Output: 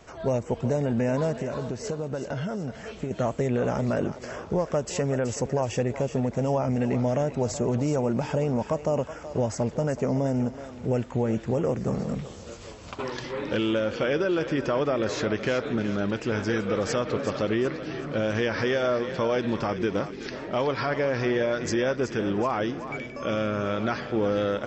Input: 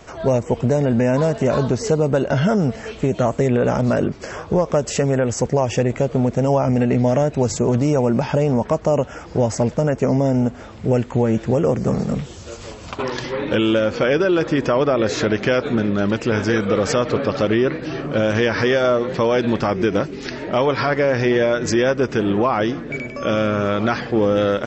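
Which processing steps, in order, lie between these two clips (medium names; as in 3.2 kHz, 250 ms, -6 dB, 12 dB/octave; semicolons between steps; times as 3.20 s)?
1.40–3.11 s: compression, threshold -20 dBFS, peak gain reduction 7.5 dB; thinning echo 375 ms, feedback 42%, high-pass 580 Hz, level -10 dB; trim -8 dB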